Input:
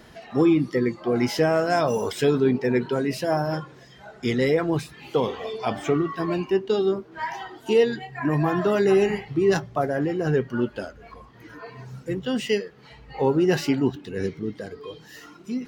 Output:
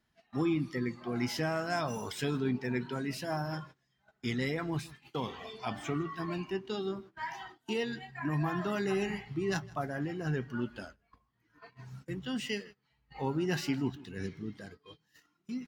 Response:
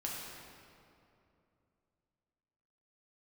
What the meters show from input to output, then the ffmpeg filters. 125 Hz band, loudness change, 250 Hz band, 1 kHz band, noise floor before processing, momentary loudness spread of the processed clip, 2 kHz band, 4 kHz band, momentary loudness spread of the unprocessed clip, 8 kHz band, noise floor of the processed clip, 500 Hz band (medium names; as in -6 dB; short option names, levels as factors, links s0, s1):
-7.5 dB, -11.5 dB, -10.5 dB, -10.0 dB, -49 dBFS, 10 LU, -7.5 dB, -7.0 dB, 16 LU, no reading, -77 dBFS, -15.0 dB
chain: -af "equalizer=f=480:t=o:w=1:g=-10.5,aecho=1:1:159:0.075,agate=range=0.1:threshold=0.00794:ratio=16:detection=peak,volume=0.447"